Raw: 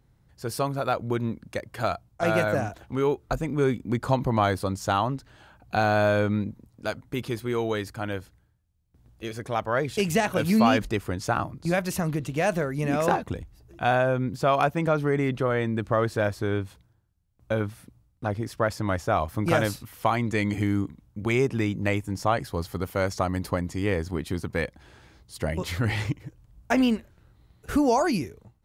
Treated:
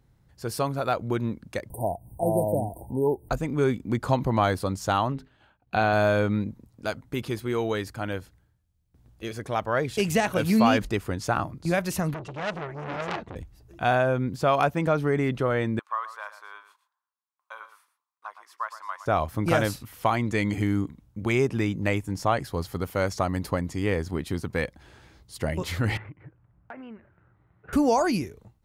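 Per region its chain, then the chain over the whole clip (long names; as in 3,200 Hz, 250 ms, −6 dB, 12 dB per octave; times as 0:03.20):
0:01.70–0:03.29: high-shelf EQ 5,700 Hz +9.5 dB + upward compression, threshold −29 dBFS + linear-phase brick-wall band-stop 1,000–8,200 Hz
0:05.12–0:05.93: high shelf with overshoot 4,300 Hz −6.5 dB, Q 1.5 + hum removal 51.56 Hz, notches 9 + downward expander −46 dBFS
0:12.14–0:13.36: high-frequency loss of the air 99 metres + notch comb filter 260 Hz + saturating transformer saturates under 2,900 Hz
0:15.79–0:19.06: four-pole ladder high-pass 980 Hz, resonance 75% + single-tap delay 115 ms −12 dB
0:25.97–0:27.73: loudspeaker in its box 110–2,100 Hz, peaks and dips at 250 Hz −8 dB, 480 Hz −4 dB, 1,400 Hz +4 dB + downward compressor 5 to 1, threshold −40 dBFS
whole clip: no processing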